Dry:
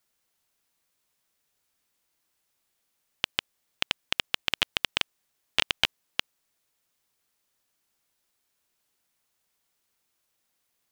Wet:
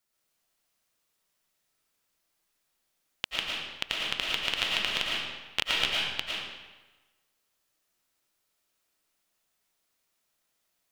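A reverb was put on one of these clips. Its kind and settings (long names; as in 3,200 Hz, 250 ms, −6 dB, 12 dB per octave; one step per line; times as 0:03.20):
comb and all-pass reverb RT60 1.2 s, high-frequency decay 0.85×, pre-delay 70 ms, DRR −4 dB
level −5 dB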